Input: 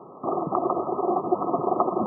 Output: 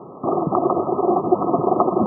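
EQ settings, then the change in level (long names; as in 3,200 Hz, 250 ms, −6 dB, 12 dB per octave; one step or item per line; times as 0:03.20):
spectral tilt −2 dB per octave
+4.0 dB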